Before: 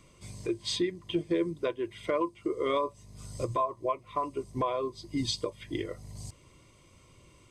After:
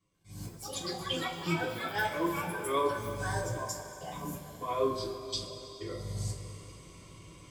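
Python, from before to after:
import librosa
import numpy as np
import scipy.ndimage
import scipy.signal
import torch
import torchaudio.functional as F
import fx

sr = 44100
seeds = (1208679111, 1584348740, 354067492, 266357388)

y = fx.auto_swell(x, sr, attack_ms=294.0)
y = fx.step_gate(y, sr, bpm=62, pattern='.x.xx.x.xxxxxxx.', floor_db=-24.0, edge_ms=4.5)
y = fx.echo_pitch(y, sr, ms=134, semitones=7, count=3, db_per_echo=-3.0)
y = fx.rev_double_slope(y, sr, seeds[0], early_s=0.24, late_s=3.7, knee_db=-18, drr_db=-9.5)
y = F.gain(torch.from_numpy(y), -4.5).numpy()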